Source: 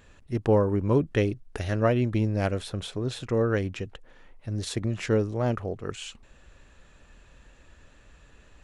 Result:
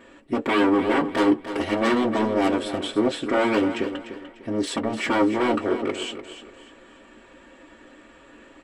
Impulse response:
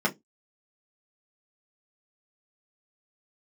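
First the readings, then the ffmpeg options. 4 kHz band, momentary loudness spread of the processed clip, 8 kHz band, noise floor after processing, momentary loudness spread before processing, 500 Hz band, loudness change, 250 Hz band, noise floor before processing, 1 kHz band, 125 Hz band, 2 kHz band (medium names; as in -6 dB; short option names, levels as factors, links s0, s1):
+7.5 dB, 11 LU, +3.0 dB, -51 dBFS, 12 LU, +3.0 dB, +4.0 dB, +7.0 dB, -56 dBFS, +10.0 dB, -12.0 dB, +9.0 dB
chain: -filter_complex "[0:a]aeval=exprs='0.0531*(abs(mod(val(0)/0.0531+3,4)-2)-1)':c=same,aecho=1:1:297|594|891:0.282|0.0902|0.0289[s0];[1:a]atrim=start_sample=2205,asetrate=66150,aresample=44100[s1];[s0][s1]afir=irnorm=-1:irlink=0"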